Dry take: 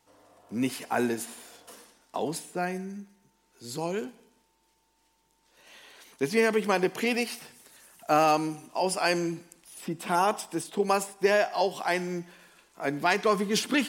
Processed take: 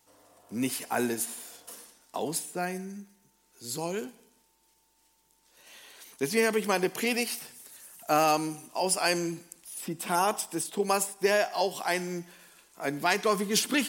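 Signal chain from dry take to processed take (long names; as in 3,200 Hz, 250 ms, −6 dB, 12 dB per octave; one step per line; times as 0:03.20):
high-shelf EQ 6,200 Hz +11.5 dB
level −2 dB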